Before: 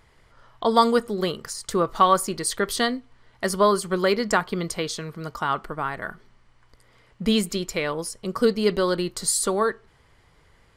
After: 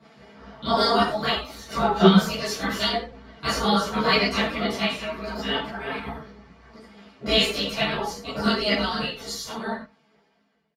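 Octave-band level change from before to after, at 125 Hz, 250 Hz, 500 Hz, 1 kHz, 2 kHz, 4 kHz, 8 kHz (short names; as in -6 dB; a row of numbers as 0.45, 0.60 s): +3.5, +1.5, -2.5, -2.0, +3.0, +6.0, -9.5 dB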